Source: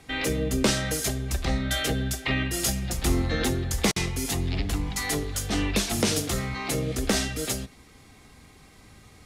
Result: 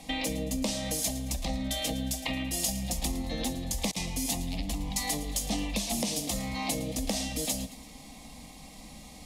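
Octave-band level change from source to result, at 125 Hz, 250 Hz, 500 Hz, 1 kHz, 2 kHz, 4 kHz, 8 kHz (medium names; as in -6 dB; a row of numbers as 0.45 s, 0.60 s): -8.5 dB, -4.5 dB, -7.5 dB, -4.0 dB, -9.0 dB, -4.0 dB, -2.0 dB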